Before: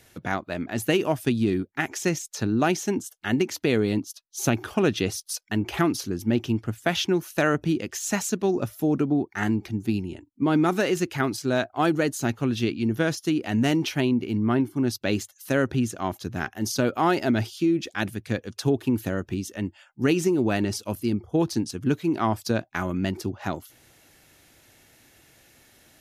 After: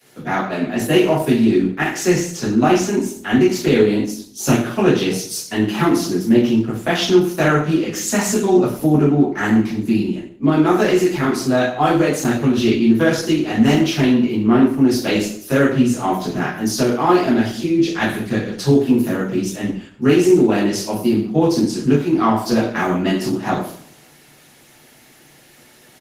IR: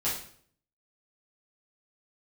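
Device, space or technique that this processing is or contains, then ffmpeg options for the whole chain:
far-field microphone of a smart speaker: -filter_complex "[0:a]highpass=f=91:w=0.5412,highpass=f=91:w=1.3066,adynamicequalizer=threshold=0.0141:dfrequency=130:dqfactor=1.5:tfrequency=130:tqfactor=1.5:attack=5:release=100:ratio=0.375:range=2:mode=cutabove:tftype=bell,asplit=3[a][b][c];[a]afade=t=out:st=22.56:d=0.02[d];[b]asplit=2[e][f];[f]adelay=24,volume=-5dB[g];[e][g]amix=inputs=2:normalize=0,afade=t=in:st=22.56:d=0.02,afade=t=out:st=23.3:d=0.02[h];[c]afade=t=in:st=23.3:d=0.02[i];[d][h][i]amix=inputs=3:normalize=0,asplit=2[j][k];[k]adelay=97,lowpass=f=2.3k:p=1,volume=-18dB,asplit=2[l][m];[m]adelay=97,lowpass=f=2.3k:p=1,volume=0.39,asplit=2[n][o];[o]adelay=97,lowpass=f=2.3k:p=1,volume=0.39[p];[j][l][n][p]amix=inputs=4:normalize=0[q];[1:a]atrim=start_sample=2205[r];[q][r]afir=irnorm=-1:irlink=0,highpass=f=130:w=0.5412,highpass=f=130:w=1.3066,dynaudnorm=f=110:g=7:m=3dB" -ar 48000 -c:a libopus -b:a 16k

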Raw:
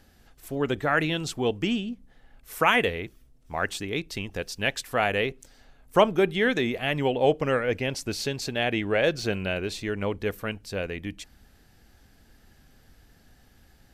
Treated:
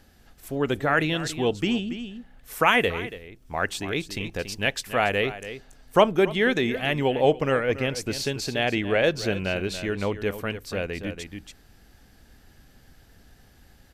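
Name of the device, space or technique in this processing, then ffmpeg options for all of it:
ducked delay: -filter_complex "[0:a]asplit=3[a][b][c];[b]adelay=282,volume=-5dB[d];[c]apad=whole_len=627174[e];[d][e]sidechaincompress=threshold=-30dB:ratio=8:attack=24:release=920[f];[a][f]amix=inputs=2:normalize=0,volume=1.5dB"

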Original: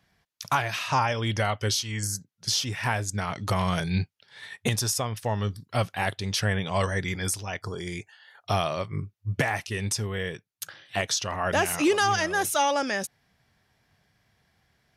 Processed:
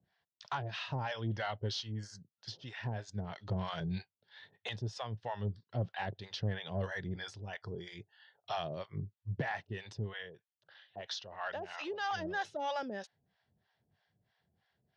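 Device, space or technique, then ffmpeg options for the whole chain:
guitar amplifier with harmonic tremolo: -filter_complex "[0:a]asettb=1/sr,asplit=3[a][b][c];[a]atrim=end=10.134[d];[b]atrim=start=10.13:end=12.11,asetpts=PTS-STARTPTS,afade=t=in:d=0.004:c=qsin,afade=t=out:st=1.976:d=0.004:c=qsin,acrossover=split=570 7000:gain=0.178 1 0.251[e][f][g];[e][f][g]amix=inputs=3:normalize=0[h];[c]atrim=start=12.106[i];[d][h]acrossfade=d=0.004:c1=hsin:c2=qsin[j];[j][i]acrossfade=d=0.004:c1=qsin:c2=hsin,acrossover=split=600[k][l];[k]aeval=exprs='val(0)*(1-1/2+1/2*cos(2*PI*3.1*n/s))':c=same[m];[l]aeval=exprs='val(0)*(1-1/2-1/2*cos(2*PI*3.1*n/s))':c=same[n];[m][n]amix=inputs=2:normalize=0,asoftclip=type=tanh:threshold=-19.5dB,highpass=79,equalizer=f=270:t=q:w=4:g=-5,equalizer=f=1.2k:t=q:w=4:g=-7,equalizer=f=2.3k:t=q:w=4:g=-9,lowpass=f=4.2k:w=0.5412,lowpass=f=4.2k:w=1.3066,volume=-4dB"

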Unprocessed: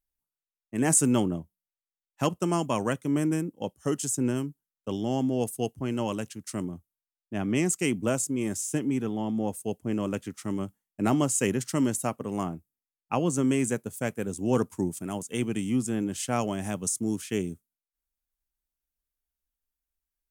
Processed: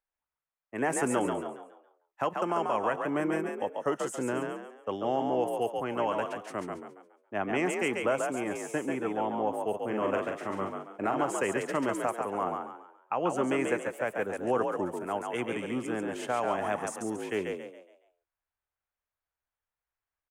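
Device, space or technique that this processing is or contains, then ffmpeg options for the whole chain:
DJ mixer with the lows and highs turned down: -filter_complex "[0:a]asplit=3[a][b][c];[a]afade=t=out:st=9.73:d=0.02[d];[b]asplit=2[e][f];[f]adelay=42,volume=-4dB[g];[e][g]amix=inputs=2:normalize=0,afade=t=in:st=9.73:d=0.02,afade=t=out:st=11.23:d=0.02[h];[c]afade=t=in:st=11.23:d=0.02[i];[d][h][i]amix=inputs=3:normalize=0,acrossover=split=480 2200:gain=0.112 1 0.0891[j][k][l];[j][k][l]amix=inputs=3:normalize=0,alimiter=level_in=1.5dB:limit=-24dB:level=0:latency=1:release=86,volume=-1.5dB,asplit=6[m][n][o][p][q][r];[n]adelay=139,afreqshift=52,volume=-4.5dB[s];[o]adelay=278,afreqshift=104,volume=-13.4dB[t];[p]adelay=417,afreqshift=156,volume=-22.2dB[u];[q]adelay=556,afreqshift=208,volume=-31.1dB[v];[r]adelay=695,afreqshift=260,volume=-40dB[w];[m][s][t][u][v][w]amix=inputs=6:normalize=0,volume=7dB"

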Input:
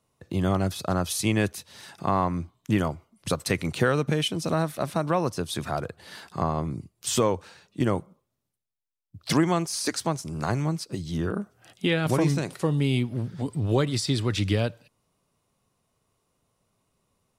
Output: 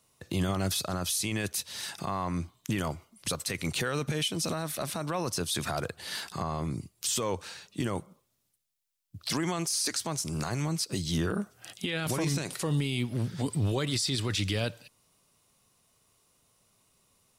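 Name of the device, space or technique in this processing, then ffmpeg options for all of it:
stacked limiters: -af "highshelf=f=2k:g=11,alimiter=limit=-15dB:level=0:latency=1:release=273,alimiter=limit=-20.5dB:level=0:latency=1:release=11"

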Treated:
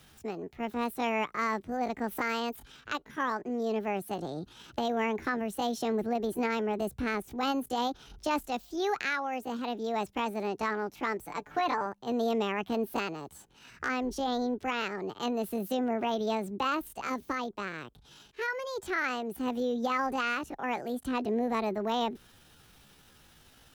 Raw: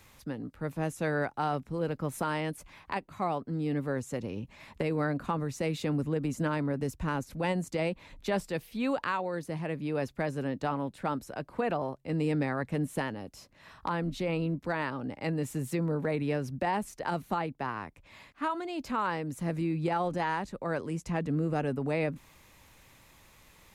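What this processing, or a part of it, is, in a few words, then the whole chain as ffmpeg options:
chipmunk voice: -filter_complex "[0:a]asetrate=66075,aresample=44100,atempo=0.66742,asettb=1/sr,asplit=3[a][b][c];[a]atrim=end=11.224[d];[b]atrim=start=11.22:end=11.86,asetpts=PTS-STARTPTS,afade=t=in:d=0.004:c=qsin,afade=t=out:st=0.636:d=0.004:c=qsin,aecho=1:1:6.8:0.53,atrim=end_sample=28224[e];[c]atrim=start=11.856[f];[d][e]acrossfade=d=0.004:c1=hsin:c2=qsin[g];[g][f]acrossfade=d=0.004:c1=qsin:c2=hsin,asettb=1/sr,asplit=3[h][i][j];[h]atrim=end=16.944[k];[i]atrim=start=16.94:end=18.48,asetpts=PTS-STARTPTS,afade=t=in:d=0.004:c=qsin,afade=t=out:st=1.536:d=0.004:c=qsin,equalizer=f=1.8k:t=o:w=1.7:g=-4[l];[j]atrim=start=18.476[m];[k][l]acrossfade=d=0.004:c1=hsin:c2=qsin[n];[n][m]acrossfade=d=0.004:c1=qsin:c2=hsin"

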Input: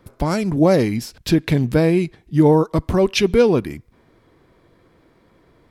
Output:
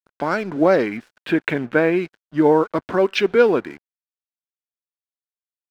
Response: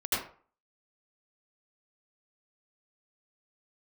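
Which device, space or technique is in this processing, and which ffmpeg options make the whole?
pocket radio on a weak battery: -filter_complex "[0:a]asettb=1/sr,asplit=3[a][b][c];[a]atrim=end=0.864[d];[b]atrim=start=0.86:end=1.96,asetpts=PTS-STARTPTS,afade=t=in:d=0.004:c=qsin,afade=t=out:st=1.096:d=0.004:c=qsin,highshelf=f=4k:t=q:w=1.5:g=-11.5[e];[c]atrim=start=1.956[f];[d][e]acrossfade=d=0.004:c1=hsin:c2=qsin[g];[g][f]acrossfade=d=0.004:c1=qsin:c2=hsin,highpass=320,lowpass=3.2k,aeval=exprs='sgn(val(0))*max(abs(val(0))-0.00531,0)':c=same,equalizer=f=1.5k:t=o:w=0.37:g=9,volume=1dB"

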